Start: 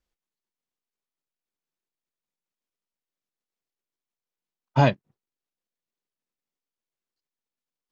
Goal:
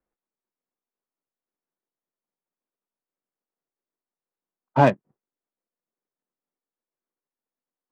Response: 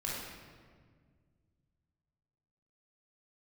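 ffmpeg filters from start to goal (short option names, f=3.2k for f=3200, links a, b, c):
-filter_complex "[0:a]acrossover=split=170 2400:gain=0.224 1 0.178[a][b][c];[a][b][c]amix=inputs=3:normalize=0,adynamicsmooth=sensitivity=3:basefreq=1.9k,volume=4.5dB"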